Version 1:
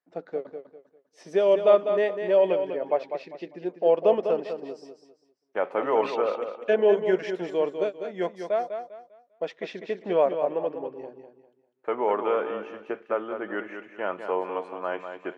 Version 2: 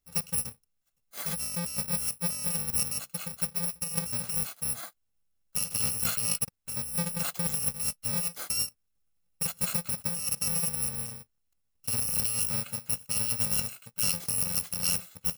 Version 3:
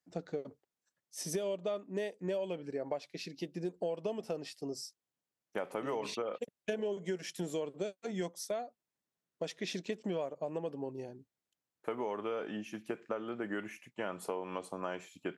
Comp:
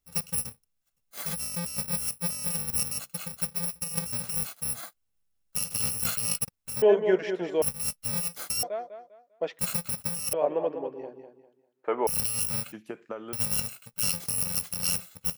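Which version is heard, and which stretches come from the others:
2
0:06.82–0:07.62: punch in from 1
0:08.63–0:09.59: punch in from 1
0:10.33–0:12.07: punch in from 1
0:12.72–0:13.33: punch in from 3

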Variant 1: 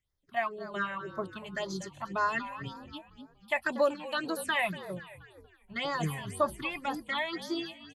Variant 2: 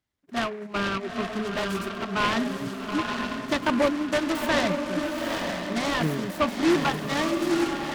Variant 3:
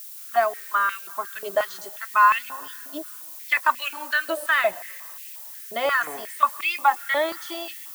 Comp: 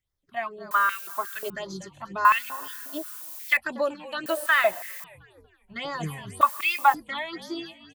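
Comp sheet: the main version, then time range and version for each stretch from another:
1
0:00.71–0:01.50: punch in from 3
0:02.25–0:03.57: punch in from 3
0:04.26–0:05.04: punch in from 3
0:06.41–0:06.94: punch in from 3
not used: 2

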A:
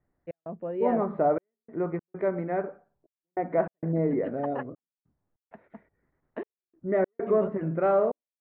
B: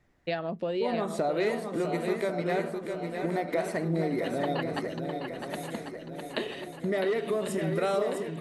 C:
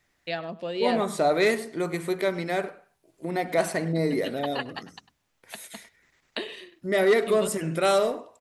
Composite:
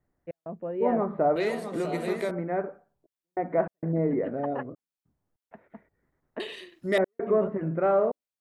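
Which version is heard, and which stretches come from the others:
A
0:01.36–0:02.31: punch in from B
0:06.40–0:06.98: punch in from C

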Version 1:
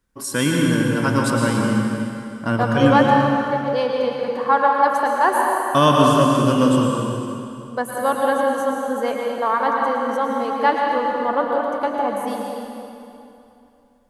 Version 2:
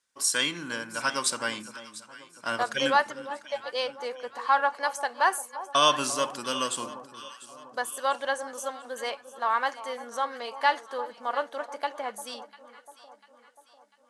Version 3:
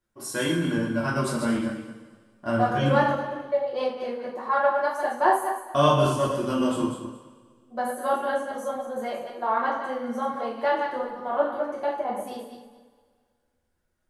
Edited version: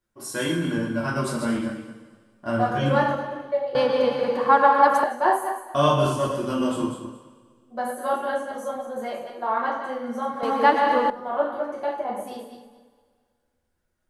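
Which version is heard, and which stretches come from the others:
3
0:03.75–0:05.04: punch in from 1
0:10.43–0:11.10: punch in from 1
not used: 2

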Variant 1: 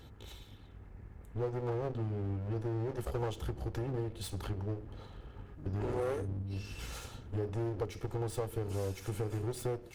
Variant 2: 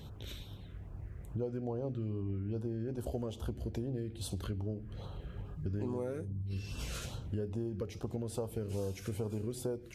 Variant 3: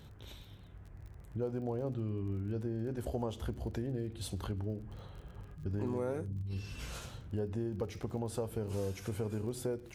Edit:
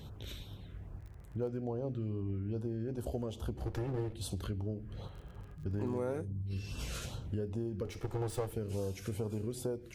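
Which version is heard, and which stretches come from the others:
2
0:00.99–0:01.48: punch in from 3
0:03.57–0:04.14: punch in from 1
0:05.08–0:06.22: punch in from 3
0:07.85–0:08.53: punch in from 1

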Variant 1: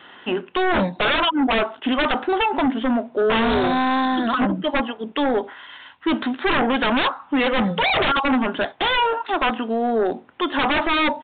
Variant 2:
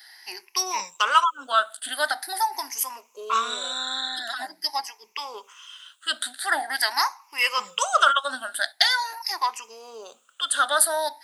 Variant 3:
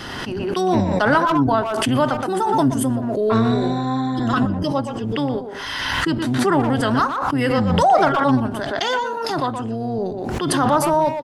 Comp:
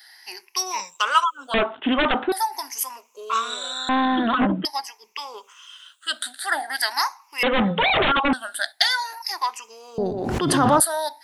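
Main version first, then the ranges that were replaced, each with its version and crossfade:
2
0:01.54–0:02.32: punch in from 1
0:03.89–0:04.65: punch in from 1
0:07.43–0:08.33: punch in from 1
0:09.98–0:10.80: punch in from 3

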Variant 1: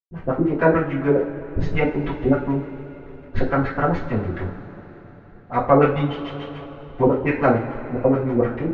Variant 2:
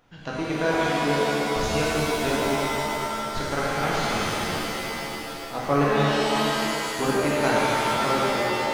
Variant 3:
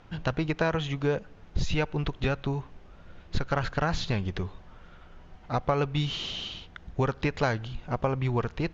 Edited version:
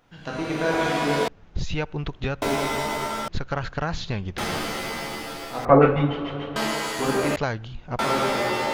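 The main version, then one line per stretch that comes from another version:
2
0:01.28–0:02.42: punch in from 3
0:03.28–0:04.38: punch in from 3
0:05.65–0:06.56: punch in from 1
0:07.36–0:07.99: punch in from 3

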